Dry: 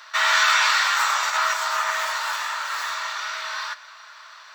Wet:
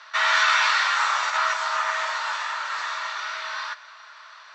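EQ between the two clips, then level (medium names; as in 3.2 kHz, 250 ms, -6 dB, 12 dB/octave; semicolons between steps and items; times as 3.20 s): resonant low-pass 7.7 kHz, resonance Q 1.9; distance through air 160 m; 0.0 dB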